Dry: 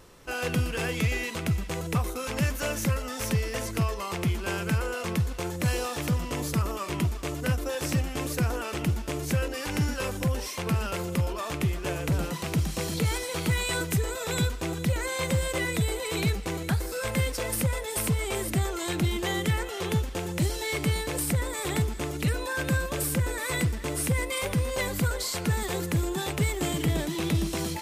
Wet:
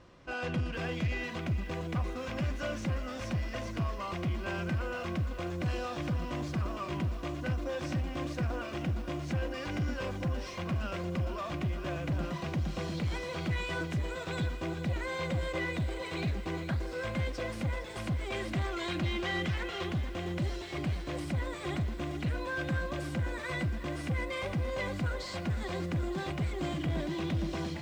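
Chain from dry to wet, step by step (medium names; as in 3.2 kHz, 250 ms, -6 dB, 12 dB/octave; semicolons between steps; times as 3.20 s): 18.32–19.84 s: peaking EQ 2.7 kHz +6.5 dB 2.4 oct; saturation -24.5 dBFS, distortion -13 dB; distance through air 150 m; comb of notches 440 Hz; bit-crushed delay 460 ms, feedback 80%, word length 9-bit, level -13.5 dB; trim -1.5 dB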